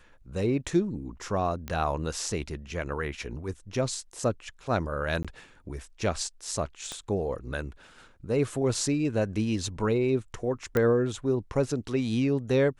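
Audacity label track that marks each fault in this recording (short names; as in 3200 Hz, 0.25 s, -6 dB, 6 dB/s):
1.680000	1.680000	pop -19 dBFS
5.230000	5.250000	gap 16 ms
6.920000	6.920000	pop -21 dBFS
10.770000	10.770000	pop -13 dBFS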